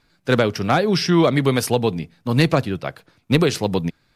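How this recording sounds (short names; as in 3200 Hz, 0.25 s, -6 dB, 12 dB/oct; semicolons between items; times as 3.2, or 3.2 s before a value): noise floor -63 dBFS; spectral tilt -5.0 dB/oct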